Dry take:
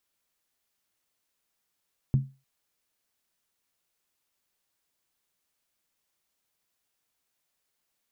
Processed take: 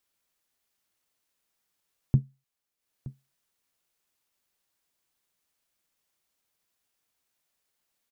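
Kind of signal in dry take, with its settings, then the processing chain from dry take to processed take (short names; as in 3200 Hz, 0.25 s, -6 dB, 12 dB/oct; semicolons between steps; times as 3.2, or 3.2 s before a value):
skin hit length 0.30 s, lowest mode 135 Hz, decay 0.29 s, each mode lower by 11.5 dB, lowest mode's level -15.5 dB
transient shaper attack +4 dB, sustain -8 dB; echo 0.921 s -18 dB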